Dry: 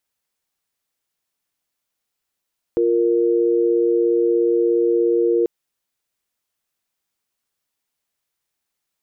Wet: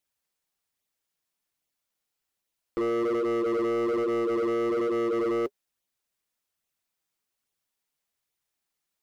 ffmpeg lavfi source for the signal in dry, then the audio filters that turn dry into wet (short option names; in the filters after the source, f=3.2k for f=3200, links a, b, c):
-f lavfi -i "aevalsrc='0.141*(sin(2*PI*349.23*t)+sin(2*PI*466.16*t))':d=2.69:s=44100"
-af "flanger=delay=0.3:depth=6.3:regen=-42:speed=1.2:shape=sinusoidal,asoftclip=type=hard:threshold=-24.5dB"